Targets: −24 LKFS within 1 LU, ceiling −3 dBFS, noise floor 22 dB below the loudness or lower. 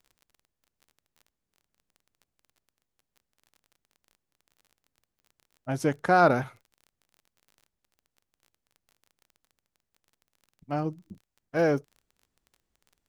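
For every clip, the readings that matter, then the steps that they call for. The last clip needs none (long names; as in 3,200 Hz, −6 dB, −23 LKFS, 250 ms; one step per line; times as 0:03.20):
crackle rate 25 per second; integrated loudness −26.5 LKFS; sample peak −7.5 dBFS; target loudness −24.0 LKFS
→ click removal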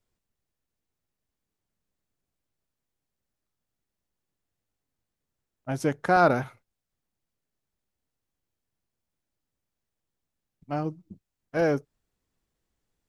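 crackle rate 0 per second; integrated loudness −26.5 LKFS; sample peak −7.5 dBFS; target loudness −24.0 LKFS
→ level +2.5 dB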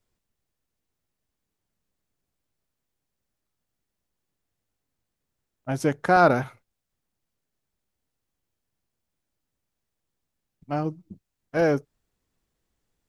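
integrated loudness −24.0 LKFS; sample peak −5.0 dBFS; background noise floor −83 dBFS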